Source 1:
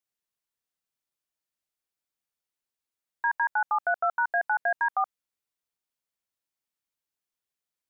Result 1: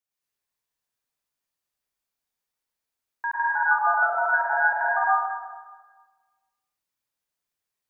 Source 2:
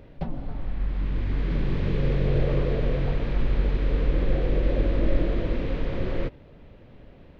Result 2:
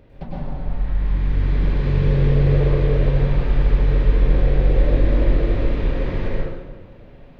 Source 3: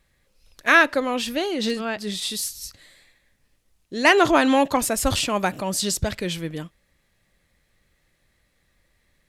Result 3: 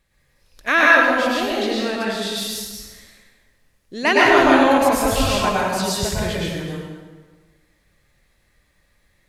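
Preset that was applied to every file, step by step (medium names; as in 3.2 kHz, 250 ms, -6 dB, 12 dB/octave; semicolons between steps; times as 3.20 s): dynamic bell 8.6 kHz, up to -6 dB, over -42 dBFS, Q 1.2; plate-style reverb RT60 1.4 s, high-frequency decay 0.7×, pre-delay 90 ms, DRR -6 dB; trim -2.5 dB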